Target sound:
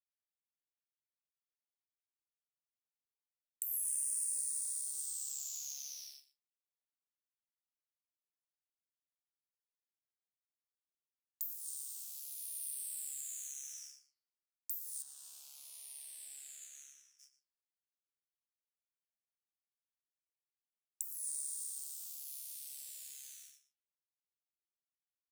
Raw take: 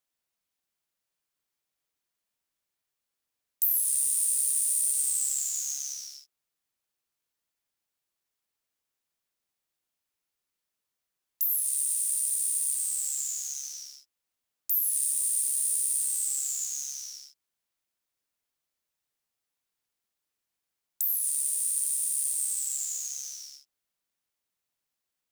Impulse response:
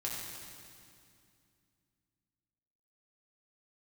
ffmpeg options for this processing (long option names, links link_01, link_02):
-filter_complex "[0:a]asettb=1/sr,asplit=3[link_01][link_02][link_03];[link_01]atrim=end=15.024[link_04];[link_02]atrim=start=15.02:end=17.19,asetpts=PTS-STARTPTS,afade=type=in:duration=0.004:curve=qsin,afade=type=out:start_time=2.166:duration=0.004:curve=qsin,aemphasis=mode=reproduction:type=75kf[link_05];[link_03]atrim=start=17.186[link_06];[link_04][link_05]acrossfade=duration=0.004:curve1=hsin:curve2=qsin[link_07];[link_07][link_06]acrossfade=duration=0.004:curve1=qsin:curve2=hsin,agate=range=-33dB:threshold=-39dB:ratio=3:detection=peak,acrossover=split=500[link_08][link_09];[link_09]acompressor=threshold=-42dB:ratio=2[link_10];[link_08][link_10]amix=inputs=2:normalize=0,flanger=delay=4.9:depth=9.4:regen=89:speed=0.6:shape=triangular,asplit=2[link_11][link_12];[link_12]adelay=116.6,volume=-14dB,highshelf=frequency=4000:gain=-2.62[link_13];[link_11][link_13]amix=inputs=2:normalize=0,asplit=2[link_14][link_15];[link_15]afreqshift=-0.3[link_16];[link_14][link_16]amix=inputs=2:normalize=1,volume=5.5dB"